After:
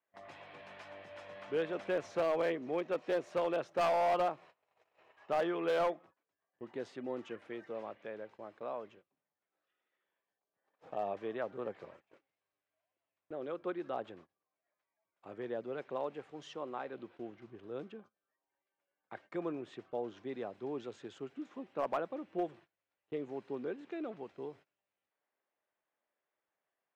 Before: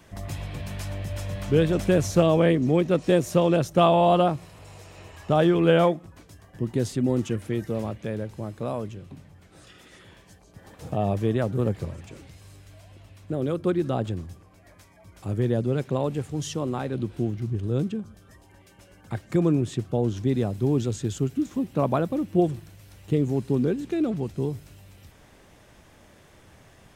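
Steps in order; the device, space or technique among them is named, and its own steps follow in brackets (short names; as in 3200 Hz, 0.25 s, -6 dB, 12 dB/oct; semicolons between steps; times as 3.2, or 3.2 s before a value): walkie-talkie (BPF 540–2400 Hz; hard clip -19.5 dBFS, distortion -14 dB; gate -49 dBFS, range -24 dB); gain -7 dB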